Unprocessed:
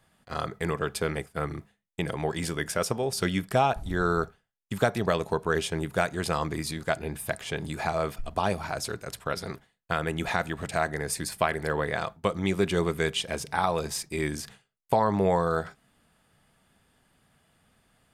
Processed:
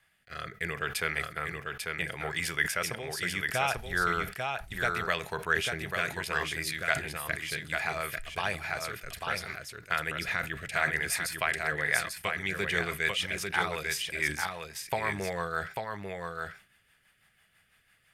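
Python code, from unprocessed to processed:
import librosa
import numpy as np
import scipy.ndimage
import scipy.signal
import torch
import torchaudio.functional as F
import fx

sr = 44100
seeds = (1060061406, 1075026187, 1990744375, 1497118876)

p1 = fx.tilt_shelf(x, sr, db=-7.0, hz=840.0)
p2 = fx.rotary_switch(p1, sr, hz=0.7, then_hz=6.0, switch_at_s=11.53)
p3 = fx.graphic_eq(p2, sr, hz=(250, 500, 1000, 2000, 4000, 8000), db=(-8, -3, -6, 6, -5, -8))
p4 = p3 + fx.echo_single(p3, sr, ms=844, db=-4.5, dry=0)
y = fx.sustainer(p4, sr, db_per_s=140.0)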